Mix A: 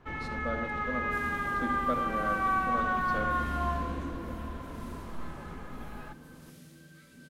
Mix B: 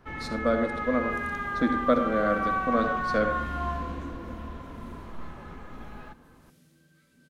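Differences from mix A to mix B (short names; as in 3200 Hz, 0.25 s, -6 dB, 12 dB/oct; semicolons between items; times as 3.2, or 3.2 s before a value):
speech +11.0 dB; second sound -8.5 dB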